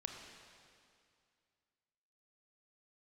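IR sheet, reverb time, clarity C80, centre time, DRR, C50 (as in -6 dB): 2.3 s, 4.5 dB, 69 ms, 2.5 dB, 3.5 dB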